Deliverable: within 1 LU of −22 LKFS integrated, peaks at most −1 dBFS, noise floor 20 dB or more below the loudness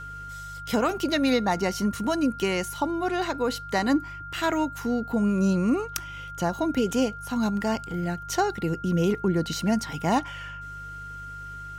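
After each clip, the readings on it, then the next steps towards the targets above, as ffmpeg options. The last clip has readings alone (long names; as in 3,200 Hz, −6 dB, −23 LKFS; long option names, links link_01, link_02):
mains hum 50 Hz; hum harmonics up to 150 Hz; level of the hum −42 dBFS; interfering tone 1,400 Hz; level of the tone −37 dBFS; integrated loudness −26.0 LKFS; sample peak −9.0 dBFS; target loudness −22.0 LKFS
→ -af "bandreject=frequency=50:width_type=h:width=4,bandreject=frequency=100:width_type=h:width=4,bandreject=frequency=150:width_type=h:width=4"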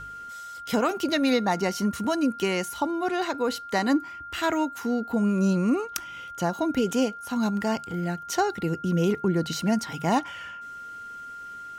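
mains hum none found; interfering tone 1,400 Hz; level of the tone −37 dBFS
→ -af "bandreject=frequency=1400:width=30"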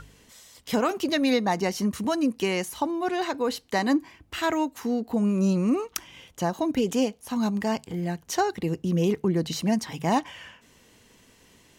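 interfering tone none found; integrated loudness −26.5 LKFS; sample peak −9.0 dBFS; target loudness −22.0 LKFS
→ -af "volume=4.5dB"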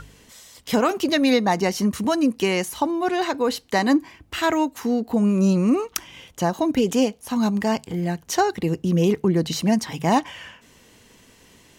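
integrated loudness −22.0 LKFS; sample peak −4.5 dBFS; background noise floor −53 dBFS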